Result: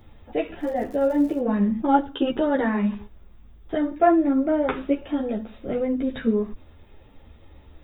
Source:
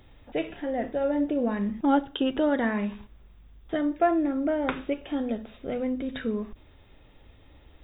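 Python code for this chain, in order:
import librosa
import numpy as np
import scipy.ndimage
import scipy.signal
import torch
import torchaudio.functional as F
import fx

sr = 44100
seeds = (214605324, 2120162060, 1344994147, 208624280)

y = fx.dmg_crackle(x, sr, seeds[0], per_s=110.0, level_db=-36.0, at=(0.59, 1.41), fade=0.02)
y = fx.peak_eq(y, sr, hz=3300.0, db=-5.5, octaves=2.4)
y = fx.ensemble(y, sr)
y = y * 10.0 ** (8.0 / 20.0)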